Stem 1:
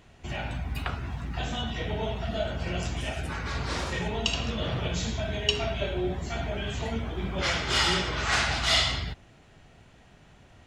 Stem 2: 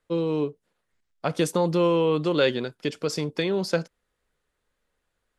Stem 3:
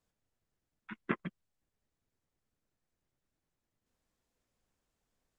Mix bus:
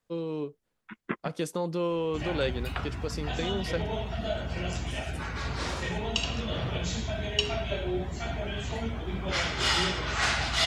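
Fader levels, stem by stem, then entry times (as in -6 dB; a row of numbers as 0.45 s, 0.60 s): -1.5 dB, -8.0 dB, +1.0 dB; 1.90 s, 0.00 s, 0.00 s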